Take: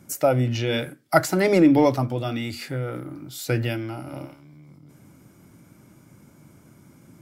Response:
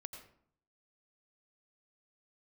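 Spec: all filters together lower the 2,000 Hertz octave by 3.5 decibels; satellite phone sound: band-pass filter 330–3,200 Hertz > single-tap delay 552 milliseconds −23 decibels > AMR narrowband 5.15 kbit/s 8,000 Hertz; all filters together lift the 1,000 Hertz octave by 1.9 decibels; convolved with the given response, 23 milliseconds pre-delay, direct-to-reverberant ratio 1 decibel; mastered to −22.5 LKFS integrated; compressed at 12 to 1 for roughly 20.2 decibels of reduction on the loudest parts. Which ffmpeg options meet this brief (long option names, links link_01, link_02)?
-filter_complex "[0:a]equalizer=frequency=1000:width_type=o:gain=4.5,equalizer=frequency=2000:width_type=o:gain=-6,acompressor=threshold=-32dB:ratio=12,asplit=2[link_01][link_02];[1:a]atrim=start_sample=2205,adelay=23[link_03];[link_02][link_03]afir=irnorm=-1:irlink=0,volume=3dB[link_04];[link_01][link_04]amix=inputs=2:normalize=0,highpass=330,lowpass=3200,aecho=1:1:552:0.0708,volume=18dB" -ar 8000 -c:a libopencore_amrnb -b:a 5150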